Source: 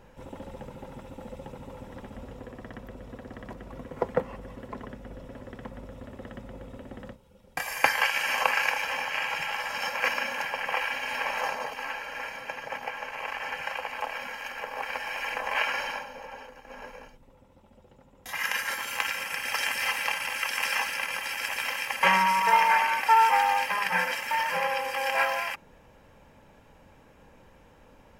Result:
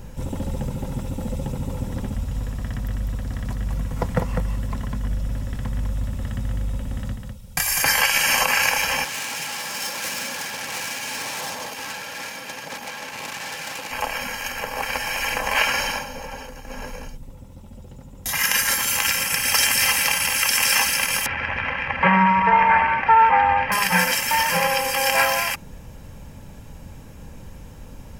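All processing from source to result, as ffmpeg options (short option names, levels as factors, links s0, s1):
-filter_complex "[0:a]asettb=1/sr,asplit=3[s0][s1][s2];[s0]atrim=end=2.144[s3];[s1]atrim=start=2.14:end=7.82,asetpts=PTS-STARTPTS,afade=t=in:d=0.004:c=qsin,afade=t=out:st=5.676:d=0.004:c=qsin,equalizer=f=370:t=o:w=1.6:g=-11,aecho=1:1:201:0.562,atrim=end_sample=250488[s4];[s2]atrim=start=7.816[s5];[s3][s4]acrossfade=d=0.004:c1=hsin:c2=qsin[s6];[s6][s5]acrossfade=d=0.004:c1=qsin:c2=hsin,asettb=1/sr,asplit=3[s7][s8][s9];[s7]atrim=end=9.044[s10];[s8]atrim=start=9.04:end=13.91,asetpts=PTS-STARTPTS,afade=t=in:d=0.004:c=qsin,afade=t=out:st=4.866:d=0.004:c=qsin,aeval=exprs='(tanh(63.1*val(0)+0.5)-tanh(0.5))/63.1':c=same,highpass=210[s11];[s9]atrim=start=13.906[s12];[s10][s11]acrossfade=d=0.004:c1=hsin:c2=qsin[s13];[s13][s12]acrossfade=d=0.004:c1=qsin:c2=hsin,asettb=1/sr,asplit=3[s14][s15][s16];[s14]atrim=end=21.264[s17];[s15]atrim=start=21.26:end=23.72,asetpts=PTS-STARTPTS,afade=t=in:d=0.004:c=qsin,afade=t=out:st=2.456:d=0.004:c=qsin,lowpass=f=2200:w=0.5412,lowpass=f=2200:w=1.3066,equalizer=f=80:w=1.2:g=7.5,acompressor=mode=upward:threshold=0.0447:ratio=2.5:attack=3.2:release=140:knee=2.83:detection=peak[s18];[s16]atrim=start=23.716[s19];[s17][s18]acrossfade=d=0.004:c1=hsin:c2=qsin[s20];[s20][s19]acrossfade=d=0.004:c1=qsin:c2=hsin,bass=f=250:g=14,treble=f=4000:g=13,alimiter=level_in=3.55:limit=0.891:release=50:level=0:latency=1,volume=0.562"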